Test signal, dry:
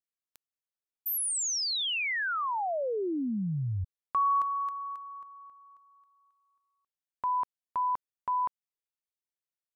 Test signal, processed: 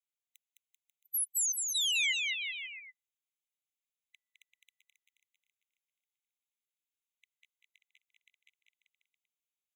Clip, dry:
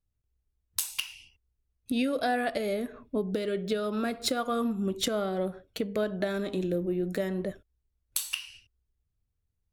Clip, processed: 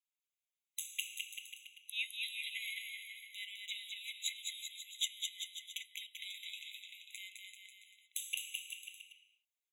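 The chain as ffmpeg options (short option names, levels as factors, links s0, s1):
-filter_complex "[0:a]highpass=f=1100:w=0.5412,highpass=f=1100:w=1.3066,alimiter=limit=0.0944:level=0:latency=1:release=371,asplit=2[s0][s1];[s1]aecho=0:1:210|388.5|540.2|669.2|778.8:0.631|0.398|0.251|0.158|0.1[s2];[s0][s2]amix=inputs=2:normalize=0,afftfilt=real='re*eq(mod(floor(b*sr/1024/2000),2),1)':imag='im*eq(mod(floor(b*sr/1024/2000),2),1)':win_size=1024:overlap=0.75"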